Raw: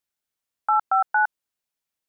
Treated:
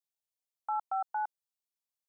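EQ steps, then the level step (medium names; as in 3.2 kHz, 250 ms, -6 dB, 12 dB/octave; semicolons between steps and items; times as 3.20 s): bass shelf 420 Hz -11.5 dB; static phaser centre 700 Hz, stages 4; -7.5 dB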